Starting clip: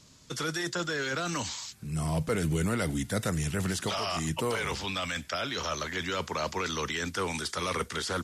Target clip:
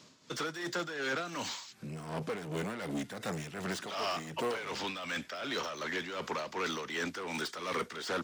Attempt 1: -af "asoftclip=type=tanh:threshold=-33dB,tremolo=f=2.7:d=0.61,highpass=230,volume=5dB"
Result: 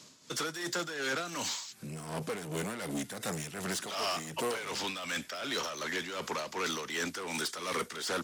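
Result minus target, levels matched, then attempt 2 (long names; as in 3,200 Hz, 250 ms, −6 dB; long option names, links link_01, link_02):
8,000 Hz band +6.0 dB
-af "asoftclip=type=tanh:threshold=-33dB,tremolo=f=2.7:d=0.61,highpass=230,equalizer=frequency=11000:width=0.57:gain=-12.5,volume=5dB"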